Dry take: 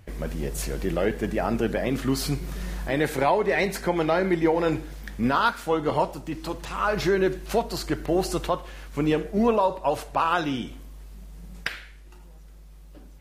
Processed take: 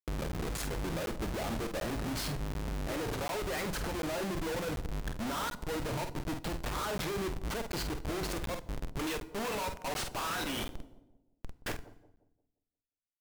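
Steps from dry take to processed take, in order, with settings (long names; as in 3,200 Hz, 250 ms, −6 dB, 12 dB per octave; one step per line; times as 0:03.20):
0:08.99–0:10.72: meter weighting curve ITU-R 468
downward compressor 2 to 1, threshold −27 dBFS, peak gain reduction 6.5 dB
reverb reduction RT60 1.1 s
comparator with hysteresis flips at −36 dBFS
double-tracking delay 48 ms −8 dB
feedback delay network reverb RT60 0.8 s, low-frequency decay 1.5×, high-frequency decay 0.85×, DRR 18 dB
pitch vibrato 3.1 Hz 38 cents
brickwall limiter −30 dBFS, peak gain reduction 6 dB
on a send: bucket-brigade delay 175 ms, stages 1,024, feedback 37%, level −16 dB
on the sum: regular buffer underruns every 0.74 s, samples 512, zero, from 0:00.32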